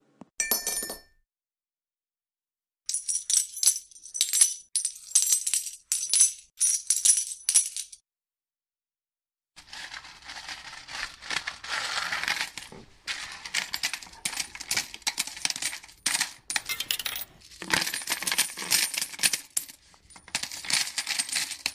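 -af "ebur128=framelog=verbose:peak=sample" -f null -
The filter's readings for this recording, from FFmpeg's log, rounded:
Integrated loudness:
  I:         -26.0 LUFS
  Threshold: -36.7 LUFS
Loudness range:
  LRA:        10.1 LU
  Threshold: -47.1 LUFS
  LRA low:   -32.9 LUFS
  LRA high:  -22.8 LUFS
Sample peak:
  Peak:       -6.8 dBFS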